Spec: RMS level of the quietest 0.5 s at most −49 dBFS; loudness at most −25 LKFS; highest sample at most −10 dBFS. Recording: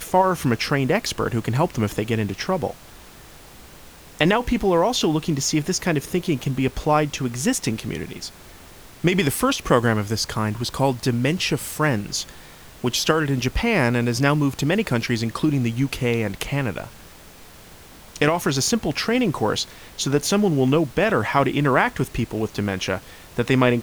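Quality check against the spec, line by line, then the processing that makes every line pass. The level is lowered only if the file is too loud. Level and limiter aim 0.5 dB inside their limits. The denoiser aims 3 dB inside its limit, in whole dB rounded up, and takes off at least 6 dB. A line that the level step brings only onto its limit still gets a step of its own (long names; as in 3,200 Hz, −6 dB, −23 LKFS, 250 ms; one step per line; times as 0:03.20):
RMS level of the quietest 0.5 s −44 dBFS: out of spec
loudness −22.0 LKFS: out of spec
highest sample −4.0 dBFS: out of spec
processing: broadband denoise 6 dB, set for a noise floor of −44 dBFS
level −3.5 dB
brickwall limiter −10.5 dBFS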